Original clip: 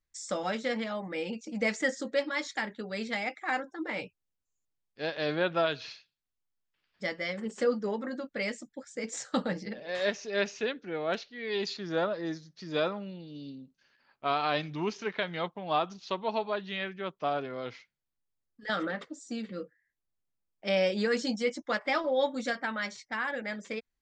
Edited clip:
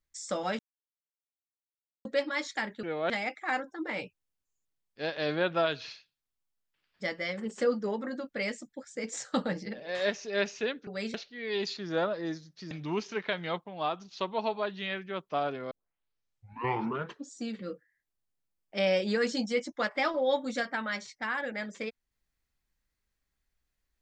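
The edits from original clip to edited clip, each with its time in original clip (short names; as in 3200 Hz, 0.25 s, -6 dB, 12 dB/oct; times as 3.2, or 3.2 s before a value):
0.59–2.05 mute
2.83–3.1 swap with 10.87–11.14
12.71–14.61 cut
15.54–16.01 gain -3.5 dB
17.61 tape start 1.64 s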